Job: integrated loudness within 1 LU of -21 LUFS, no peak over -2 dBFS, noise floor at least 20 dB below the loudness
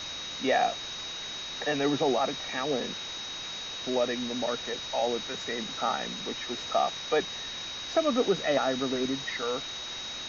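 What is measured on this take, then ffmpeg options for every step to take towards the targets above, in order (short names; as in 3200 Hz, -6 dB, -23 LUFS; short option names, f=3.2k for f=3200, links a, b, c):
steady tone 3800 Hz; tone level -37 dBFS; noise floor -38 dBFS; noise floor target -50 dBFS; loudness -30.0 LUFS; peak -13.0 dBFS; loudness target -21.0 LUFS
-> -af "bandreject=f=3.8k:w=30"
-af "afftdn=nr=12:nf=-38"
-af "volume=9dB"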